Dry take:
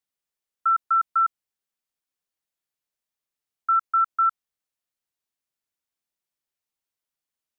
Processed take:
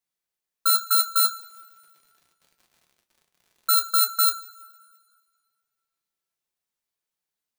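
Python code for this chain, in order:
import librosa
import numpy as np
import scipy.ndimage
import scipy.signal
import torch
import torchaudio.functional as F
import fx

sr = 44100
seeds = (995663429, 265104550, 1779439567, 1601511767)

y = fx.bit_reversed(x, sr, seeds[0], block=16)
y = fx.dmg_crackle(y, sr, seeds[1], per_s=130.0, level_db=-48.0, at=(1.22, 3.89), fade=0.02)
y = fx.rev_double_slope(y, sr, seeds[2], early_s=0.24, late_s=1.9, knee_db=-22, drr_db=4.5)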